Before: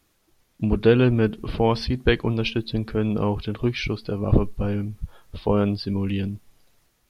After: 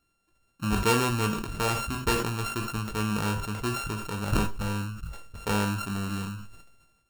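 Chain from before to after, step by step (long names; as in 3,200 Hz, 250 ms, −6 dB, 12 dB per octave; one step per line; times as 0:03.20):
samples sorted by size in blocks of 32 samples
noise that follows the level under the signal 33 dB
on a send at −6 dB: convolution reverb RT60 0.25 s, pre-delay 6 ms
on the sum: level that may fall only so fast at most 52 dB per second
level −8.5 dB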